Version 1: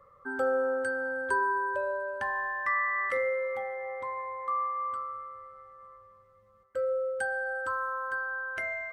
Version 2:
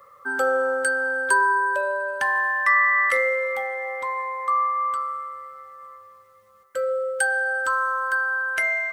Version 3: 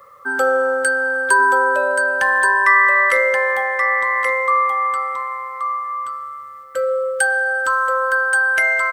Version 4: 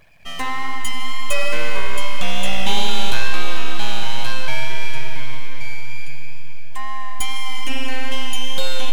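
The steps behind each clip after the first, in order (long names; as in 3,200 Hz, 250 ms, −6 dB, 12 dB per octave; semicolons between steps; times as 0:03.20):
spectral tilt +3.5 dB per octave; level +8 dB
single-tap delay 1,128 ms −5 dB; level +5 dB
full-wave rectification; tape wow and flutter 20 cents; comb and all-pass reverb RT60 4.9 s, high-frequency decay 1×, pre-delay 60 ms, DRR 9 dB; level −5.5 dB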